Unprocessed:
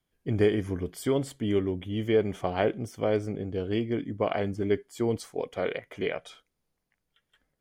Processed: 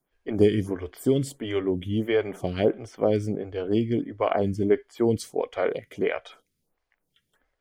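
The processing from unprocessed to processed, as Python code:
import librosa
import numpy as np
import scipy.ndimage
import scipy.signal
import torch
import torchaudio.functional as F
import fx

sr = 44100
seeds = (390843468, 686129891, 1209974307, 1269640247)

y = fx.stagger_phaser(x, sr, hz=1.5)
y = y * librosa.db_to_amplitude(6.0)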